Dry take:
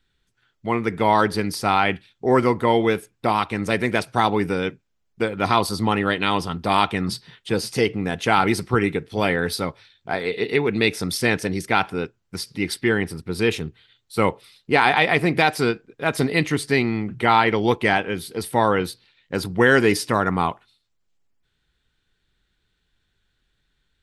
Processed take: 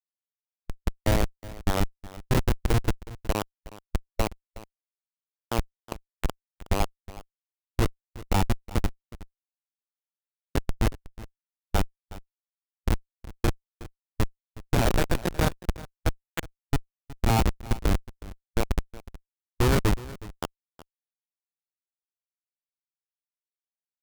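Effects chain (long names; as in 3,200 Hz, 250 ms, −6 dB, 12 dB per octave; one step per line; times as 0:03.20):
comparator with hysteresis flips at −12 dBFS
formants moved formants −4 semitones
single-tap delay 367 ms −18 dB
level +3 dB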